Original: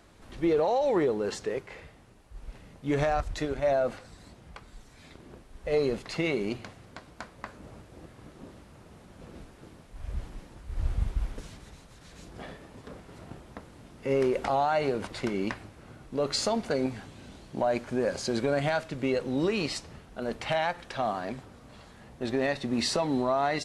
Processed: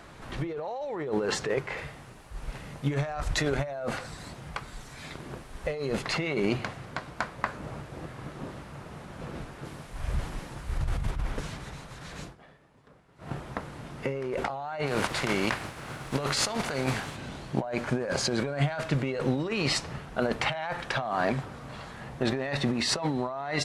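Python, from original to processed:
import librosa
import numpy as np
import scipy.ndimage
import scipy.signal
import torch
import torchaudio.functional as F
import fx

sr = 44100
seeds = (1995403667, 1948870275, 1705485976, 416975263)

y = fx.high_shelf(x, sr, hz=4700.0, db=6.5, at=(1.77, 6.01))
y = fx.high_shelf(y, sr, hz=4400.0, db=6.5, at=(9.65, 11.11))
y = fx.spec_flatten(y, sr, power=0.68, at=(14.86, 17.15), fade=0.02)
y = fx.edit(y, sr, fx.fade_down_up(start_s=12.22, length_s=1.1, db=-21.0, fade_s=0.14), tone=tone)
y = fx.peak_eq(y, sr, hz=1300.0, db=7.0, octaves=2.6)
y = fx.over_compress(y, sr, threshold_db=-30.0, ratio=-1.0)
y = fx.peak_eq(y, sr, hz=140.0, db=9.0, octaves=0.4)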